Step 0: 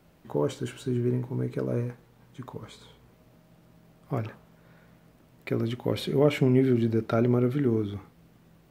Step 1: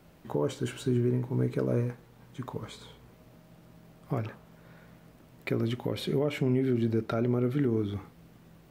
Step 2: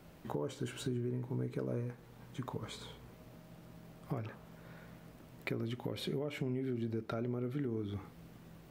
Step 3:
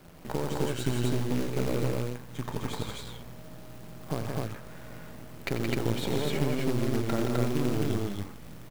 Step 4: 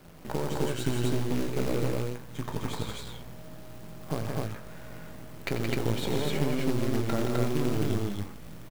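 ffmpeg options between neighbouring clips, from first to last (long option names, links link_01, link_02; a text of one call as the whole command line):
ffmpeg -i in.wav -af "alimiter=limit=-20dB:level=0:latency=1:release=387,volume=2.5dB" out.wav
ffmpeg -i in.wav -af "acompressor=threshold=-37dB:ratio=3" out.wav
ffmpeg -i in.wav -filter_complex "[0:a]aeval=exprs='if(lt(val(0),0),0.251*val(0),val(0))':channel_layout=same,acrusher=bits=3:mode=log:mix=0:aa=0.000001,asplit=2[link_01][link_02];[link_02]aecho=0:1:90.38|172|256.6:0.355|0.562|0.891[link_03];[link_01][link_03]amix=inputs=2:normalize=0,volume=8dB" out.wav
ffmpeg -i in.wav -filter_complex "[0:a]asplit=2[link_01][link_02];[link_02]adelay=19,volume=-11.5dB[link_03];[link_01][link_03]amix=inputs=2:normalize=0" out.wav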